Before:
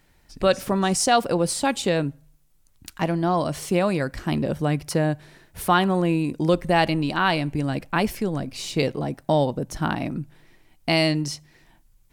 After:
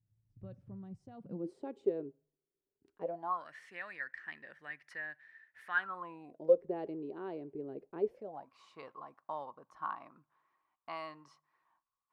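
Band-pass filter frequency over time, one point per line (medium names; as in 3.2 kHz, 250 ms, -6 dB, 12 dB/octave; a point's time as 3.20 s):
band-pass filter, Q 12
1.13 s 110 Hz
1.53 s 400 Hz
2.97 s 400 Hz
3.49 s 1.8 kHz
5.69 s 1.8 kHz
6.66 s 410 Hz
8.06 s 410 Hz
8.52 s 1.1 kHz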